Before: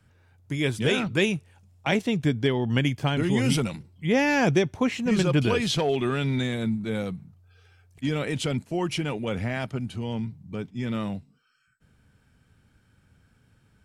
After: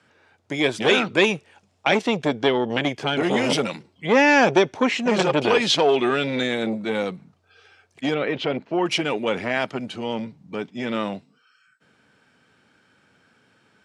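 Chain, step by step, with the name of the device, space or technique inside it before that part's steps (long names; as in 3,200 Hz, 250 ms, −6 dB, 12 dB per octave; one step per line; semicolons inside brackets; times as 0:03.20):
public-address speaker with an overloaded transformer (saturating transformer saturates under 550 Hz; band-pass filter 320–6,100 Hz)
0:08.14–0:08.86: high-frequency loss of the air 270 metres
level +9 dB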